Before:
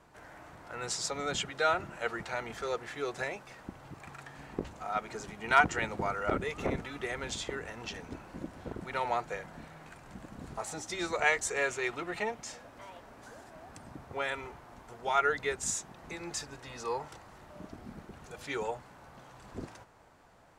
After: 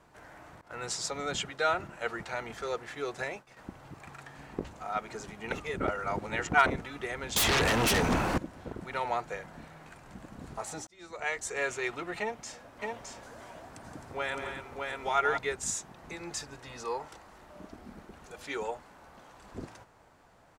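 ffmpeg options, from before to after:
-filter_complex "[0:a]asettb=1/sr,asplit=3[a][b][c];[a]atrim=end=0.614[d];[b]atrim=start=0.61:end=3.57,asetpts=PTS-STARTPTS,afade=t=in:d=0.004:c=qsin,afade=t=out:st=2.956:d=0.004:c=qsin,agate=range=-33dB:threshold=-45dB:ratio=3:release=100:detection=peak[e];[c]atrim=start=3.566[f];[d][e]acrossfade=d=0.004:c1=hsin:c2=qsin[g];[g][f]acrossfade=d=0.004:c1=qsin:c2=hsin,asettb=1/sr,asplit=3[h][i][j];[h]atrim=end=7.364[k];[i]atrim=start=7.36:end=8.38,asetpts=PTS-STARTPTS,afade=t=in:d=0.004:c=qsin,afade=t=out:st=1.016:d=0.004:c=qsin,aeval=exprs='0.0794*sin(PI/2*7.94*val(0)/0.0794)':c=same[l];[j]atrim=start=8.376[m];[k][l]acrossfade=d=0.004:c1=hsin:c2=qsin[n];[n][m]acrossfade=d=0.004:c1=qsin:c2=hsin,asplit=3[o][p][q];[o]afade=t=out:st=12.81:d=0.02[r];[p]aecho=1:1:170|262|614:0.376|0.398|0.708,afade=t=in:st=12.81:d=0.02,afade=t=out:st=15.37:d=0.02[s];[q]afade=t=in:st=15.37:d=0.02[t];[r][s][t]amix=inputs=3:normalize=0,asettb=1/sr,asplit=3[u][v][w];[u]atrim=end=16.854[x];[v]atrim=start=16.85:end=19.54,asetpts=PTS-STARTPTS,afade=t=in:d=0.004:c=qsin,afade=t=out:st=2.686:d=0.004:c=qsin,equalizer=f=120:t=o:w=0.7:g=-9.5[y];[w]atrim=start=19.536[z];[x][y]acrossfade=d=0.004:c1=hsin:c2=qsin[aa];[aa][z]acrossfade=d=0.004:c1=qsin:c2=hsin,asplit=4[ab][ac][ad][ae];[ab]atrim=end=5.522[af];[ac]atrim=start=5.518:end=6.662,asetpts=PTS-STARTPTS,areverse[ag];[ad]atrim=start=6.658:end=10.87,asetpts=PTS-STARTPTS,afade=t=out:st=4.208:d=0.004:c=hsin[ah];[ae]atrim=start=10.87,asetpts=PTS-STARTPTS,afade=t=in:d=0.85[ai];[af][ag]acrossfade=d=0.004:c1=hsin:c2=hsin[aj];[ah][ai]concat=n=2:v=0:a=1[ak];[aj][ak]acrossfade=d=0.004:c1=hsin:c2=hsin"

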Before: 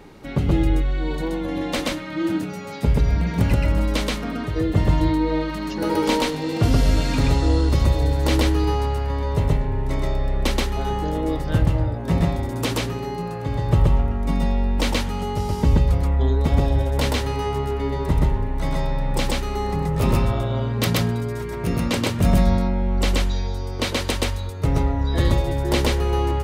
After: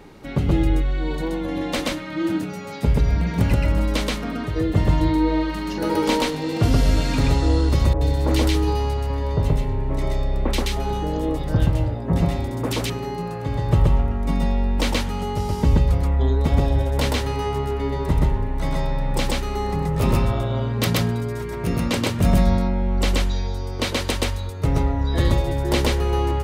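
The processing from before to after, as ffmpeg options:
-filter_complex "[0:a]asettb=1/sr,asplit=3[a][b][c];[a]atrim=end=5.114[d];[b]atrim=start=5.11:end=5.86,asetpts=PTS-STARTPTS,afade=t=in:d=0.004:c=qsin,afade=t=out:st=0.746:d=0.004:c=qsin,asplit=2[e][f];[f]adelay=41,volume=-7dB[g];[e][g]amix=inputs=2:normalize=0,atrim=end_sample=33075[h];[c]atrim=start=5.856[i];[d][h]acrossfade=d=0.004:c1=hsin:c2=qsin[j];[j][i]acrossfade=d=0.004:c1=qsin:c2=hsin,asettb=1/sr,asplit=3[k][l][m];[k]atrim=end=7.934[n];[l]atrim=start=7.93:end=12.9,asetpts=PTS-STARTPTS,afade=t=in:d=0.004:c=qsin,afade=t=out:st=4.966:d=0.004:c=qsin,acrossover=split=1600[o][p];[p]adelay=80[q];[o][q]amix=inputs=2:normalize=0,atrim=end_sample=219177[r];[m]atrim=start=12.896[s];[n][r]acrossfade=d=0.004:c1=hsin:c2=qsin[t];[t][s]acrossfade=d=0.004:c1=qsin:c2=hsin"

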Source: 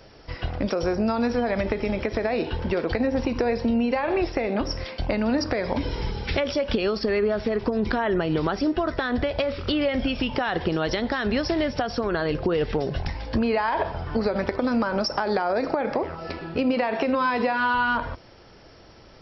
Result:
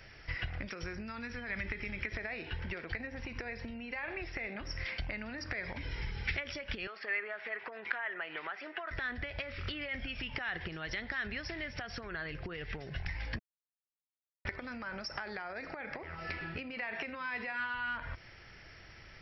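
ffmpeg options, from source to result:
-filter_complex "[0:a]asettb=1/sr,asplit=3[a][b][c];[a]atrim=end=0.694[d];[b]atrim=start=0.69:end=2.12,asetpts=PTS-STARTPTS,afade=t=in:d=0.004:c=qsin,afade=t=out:st=1.426:d=0.004:c=qsin,equalizer=f=670:t=o:w=0.77:g=-8.5[e];[c]atrim=start=2.116[f];[d][e]acrossfade=d=0.004:c1=hsin:c2=qsin[g];[g][f]acrossfade=d=0.004:c1=qsin:c2=hsin,asettb=1/sr,asplit=3[h][i][j];[h]atrim=end=6.874[k];[i]atrim=start=6.87:end=8.91,asetpts=PTS-STARTPTS,afade=t=in:d=0.004:c=qsin,afade=t=out:st=2.036:d=0.004:c=qsin,asuperpass=centerf=1300:order=4:qfactor=0.57[l];[j]atrim=start=8.906[m];[k][l]acrossfade=d=0.004:c1=hsin:c2=qsin[n];[n][m]acrossfade=d=0.004:c1=qsin:c2=hsin,asplit=3[o][p][q];[o]atrim=end=13.39,asetpts=PTS-STARTPTS,afade=t=out:st=13.386:d=0.004:c=hsin[r];[p]atrim=start=13.39:end=14.45,asetpts=PTS-STARTPTS,volume=0[s];[q]atrim=start=14.45,asetpts=PTS-STARTPTS,afade=t=in:d=0.004:c=hsin[t];[r][s][t]concat=n=3:v=0:a=1,acompressor=threshold=-31dB:ratio=6,equalizer=f=250:t=o:w=1:g=-8,equalizer=f=500:t=o:w=1:g=-8,equalizer=f=1k:t=o:w=1:g=-7,equalizer=f=2k:t=o:w=1:g=11,equalizer=f=4k:t=o:w=1:g=-5,volume=-2.5dB"

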